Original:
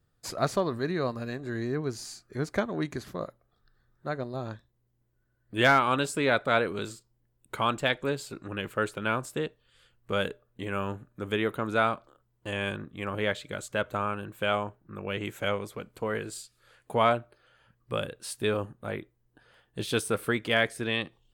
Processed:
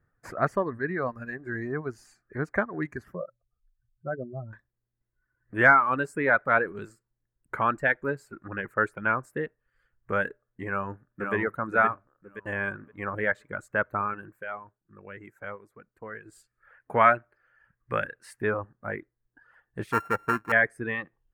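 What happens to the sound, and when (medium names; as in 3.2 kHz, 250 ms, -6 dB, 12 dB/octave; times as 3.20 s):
3.15–4.53 s: spectral contrast enhancement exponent 2.4
10.68–11.35 s: echo throw 520 ms, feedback 40%, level -4 dB
14.28–16.40 s: dip -10.5 dB, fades 0.16 s
16.94–18.42 s: peaking EQ 2.8 kHz +7 dB 2.2 oct
19.92–20.52 s: sorted samples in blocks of 32 samples
whole clip: reverb removal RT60 1.2 s; resonant high shelf 2.5 kHz -12.5 dB, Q 3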